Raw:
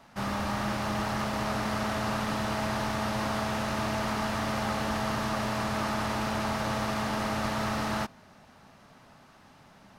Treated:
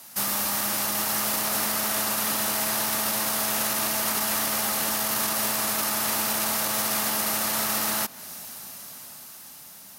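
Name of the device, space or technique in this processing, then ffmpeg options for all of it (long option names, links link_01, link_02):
FM broadcast chain: -filter_complex "[0:a]highpass=68,dynaudnorm=framelen=390:gausssize=9:maxgain=8.5dB,acrossover=split=190|3100[link_01][link_02][link_03];[link_01]acompressor=threshold=-43dB:ratio=4[link_04];[link_02]acompressor=threshold=-27dB:ratio=4[link_05];[link_03]acompressor=threshold=-48dB:ratio=4[link_06];[link_04][link_05][link_06]amix=inputs=3:normalize=0,aemphasis=mode=production:type=75fm,alimiter=limit=-21.5dB:level=0:latency=1:release=21,asoftclip=type=hard:threshold=-23dB,lowpass=frequency=15000:width=0.5412,lowpass=frequency=15000:width=1.3066,aemphasis=mode=production:type=75fm,equalizer=frequency=98:width_type=o:width=1:gain=-4.5"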